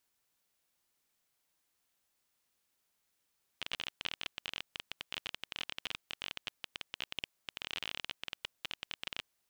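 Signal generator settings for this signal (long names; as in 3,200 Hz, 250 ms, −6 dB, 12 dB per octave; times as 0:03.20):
Geiger counter clicks 22 per second −20.5 dBFS 5.67 s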